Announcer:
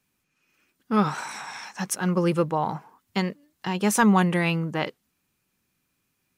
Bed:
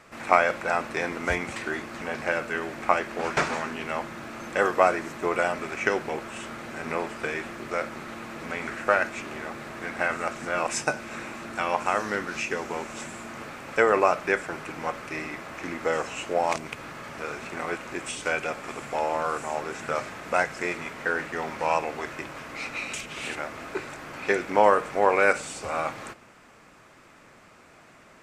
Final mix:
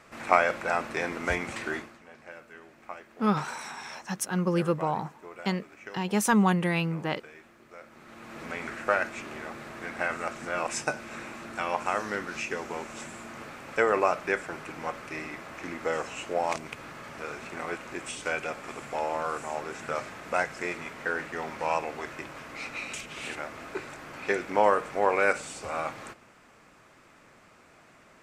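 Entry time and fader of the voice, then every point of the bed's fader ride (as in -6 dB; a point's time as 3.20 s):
2.30 s, -3.5 dB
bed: 1.77 s -2 dB
2.01 s -19 dB
7.79 s -19 dB
8.39 s -3.5 dB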